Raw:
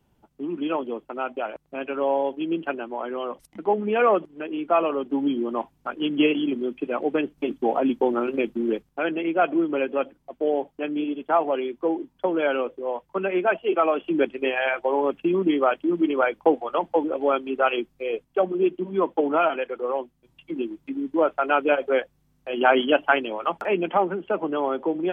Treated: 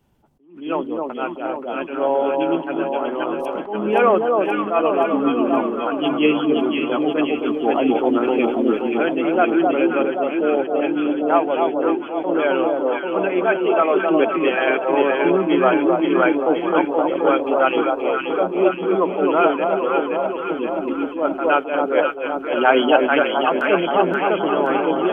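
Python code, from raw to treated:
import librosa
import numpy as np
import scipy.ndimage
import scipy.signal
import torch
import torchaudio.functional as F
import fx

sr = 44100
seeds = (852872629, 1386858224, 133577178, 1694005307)

y = fx.echo_alternate(x, sr, ms=263, hz=1100.0, feedback_pct=82, wet_db=-2.5)
y = fx.attack_slew(y, sr, db_per_s=120.0)
y = y * librosa.db_to_amplitude(3.5)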